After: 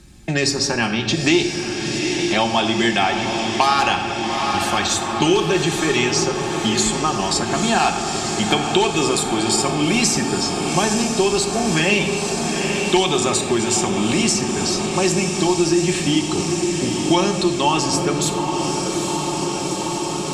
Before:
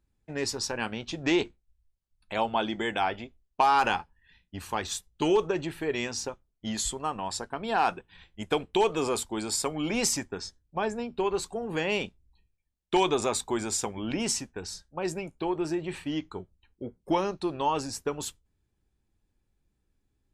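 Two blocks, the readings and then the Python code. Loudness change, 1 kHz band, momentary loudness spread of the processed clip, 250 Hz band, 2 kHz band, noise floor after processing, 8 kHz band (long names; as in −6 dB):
+11.0 dB, +9.0 dB, 5 LU, +13.5 dB, +13.0 dB, −25 dBFS, +13.0 dB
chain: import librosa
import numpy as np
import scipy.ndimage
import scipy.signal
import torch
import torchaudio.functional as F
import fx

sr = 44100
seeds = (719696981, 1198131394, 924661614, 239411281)

p1 = fx.vibrato(x, sr, rate_hz=0.89, depth_cents=5.1)
p2 = fx.high_shelf(p1, sr, hz=2100.0, db=12.0)
p3 = fx.notch_comb(p2, sr, f0_hz=490.0)
p4 = fx.rider(p3, sr, range_db=4, speed_s=0.5)
p5 = p3 + F.gain(torch.from_numpy(p4), -2.0).numpy()
p6 = scipy.signal.sosfilt(scipy.signal.butter(2, 8800.0, 'lowpass', fs=sr, output='sos'), p5)
p7 = fx.low_shelf(p6, sr, hz=310.0, db=7.5)
p8 = fx.echo_diffused(p7, sr, ms=852, feedback_pct=71, wet_db=-10.0)
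p9 = fx.room_shoebox(p8, sr, seeds[0], volume_m3=1400.0, walls='mixed', distance_m=0.95)
y = fx.band_squash(p9, sr, depth_pct=70)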